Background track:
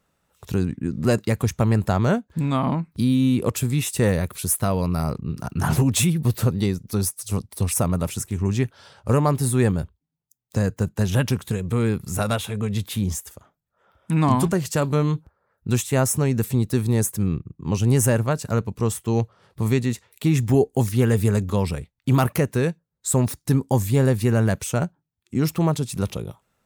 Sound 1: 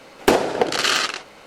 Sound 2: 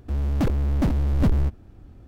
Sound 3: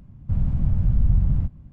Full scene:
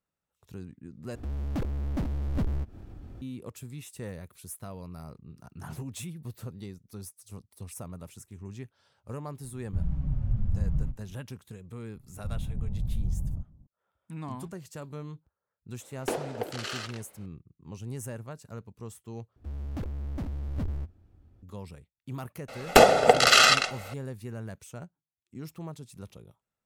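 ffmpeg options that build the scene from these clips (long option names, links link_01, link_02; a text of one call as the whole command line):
ffmpeg -i bed.wav -i cue0.wav -i cue1.wav -i cue2.wav -filter_complex "[2:a]asplit=2[link_01][link_02];[3:a]asplit=2[link_03][link_04];[1:a]asplit=2[link_05][link_06];[0:a]volume=-19.5dB[link_07];[link_01]acompressor=mode=upward:threshold=-23dB:ratio=2.5:attack=3.2:release=140:knee=2.83:detection=peak[link_08];[link_03]asplit=2[link_09][link_10];[link_10]adelay=5.1,afreqshift=-1.3[link_11];[link_09][link_11]amix=inputs=2:normalize=1[link_12];[link_04]lowpass=frequency=1000:width=0.5412,lowpass=frequency=1000:width=1.3066[link_13];[link_05]equalizer=frequency=520:width=1.6:gain=4[link_14];[link_02]equalizer=frequency=87:width_type=o:width=0.37:gain=7.5[link_15];[link_06]aecho=1:1:1.5:0.7[link_16];[link_07]asplit=3[link_17][link_18][link_19];[link_17]atrim=end=1.154[link_20];[link_08]atrim=end=2.07,asetpts=PTS-STARTPTS,volume=-9dB[link_21];[link_18]atrim=start=3.216:end=19.364[link_22];[link_15]atrim=end=2.07,asetpts=PTS-STARTPTS,volume=-14dB[link_23];[link_19]atrim=start=21.426[link_24];[link_12]atrim=end=1.72,asetpts=PTS-STARTPTS,volume=-5dB,afade=type=in:duration=0.004:curve=hsin,afade=type=out:start_time=1.716:duration=0.004:curve=hsin,adelay=9440[link_25];[link_13]atrim=end=1.72,asetpts=PTS-STARTPTS,volume=-11.5dB,afade=type=in:duration=0.004:curve=hsin,afade=type=out:start_time=1.716:duration=0.004:curve=hsin,adelay=11950[link_26];[link_14]atrim=end=1.46,asetpts=PTS-STARTPTS,volume=-17.5dB,afade=type=in:duration=0.004:curve=hsin,afade=type=out:start_time=1.456:duration=0.004:curve=hsin,adelay=15800[link_27];[link_16]atrim=end=1.46,asetpts=PTS-STARTPTS,afade=type=in:duration=0.004:curve=hsin,afade=type=out:start_time=1.456:duration=0.004:curve=hsin,adelay=22480[link_28];[link_20][link_21]acrossfade=duration=0.004:curve1=hsin:curve2=hsin[link_29];[link_29][link_22]acrossfade=duration=0.004:curve1=hsin:curve2=hsin[link_30];[link_30][link_23]acrossfade=duration=0.004:curve1=hsin:curve2=hsin[link_31];[link_31][link_24]acrossfade=duration=0.004:curve1=hsin:curve2=hsin[link_32];[link_32][link_25][link_26][link_27][link_28]amix=inputs=5:normalize=0" out.wav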